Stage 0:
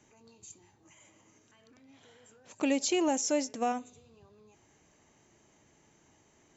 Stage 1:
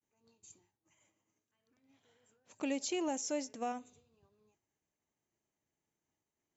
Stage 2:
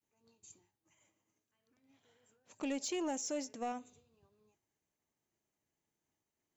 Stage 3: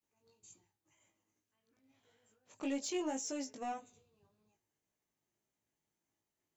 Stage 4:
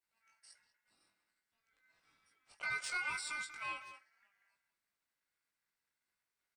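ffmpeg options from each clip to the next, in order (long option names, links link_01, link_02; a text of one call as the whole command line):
ffmpeg -i in.wav -af "agate=range=-33dB:threshold=-53dB:ratio=3:detection=peak,volume=-7.5dB" out.wav
ffmpeg -i in.wav -af "asoftclip=type=tanh:threshold=-29.5dB" out.wav
ffmpeg -i in.wav -af "flanger=delay=17.5:depth=2.3:speed=1.8,volume=2dB" out.wav
ffmpeg -i in.wav -filter_complex "[0:a]aeval=exprs='val(0)*sin(2*PI*1800*n/s)':channel_layout=same,asplit=2[link_01][link_02];[link_02]adelay=190,highpass=300,lowpass=3400,asoftclip=type=hard:threshold=-38.5dB,volume=-10dB[link_03];[link_01][link_03]amix=inputs=2:normalize=0,volume=1dB" out.wav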